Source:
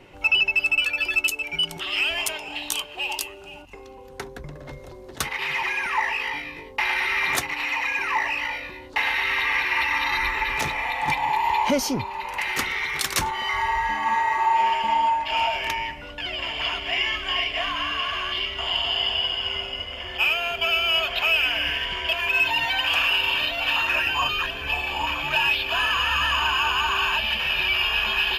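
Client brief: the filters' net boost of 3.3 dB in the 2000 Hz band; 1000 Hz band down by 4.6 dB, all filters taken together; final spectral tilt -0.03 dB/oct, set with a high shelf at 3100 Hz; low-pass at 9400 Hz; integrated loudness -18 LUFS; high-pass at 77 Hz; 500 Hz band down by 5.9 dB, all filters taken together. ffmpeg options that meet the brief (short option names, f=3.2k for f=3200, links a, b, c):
-af "highpass=77,lowpass=9.4k,equalizer=f=500:t=o:g=-7,equalizer=f=1k:t=o:g=-4.5,equalizer=f=2k:t=o:g=3,highshelf=f=3.1k:g=5.5,volume=2dB"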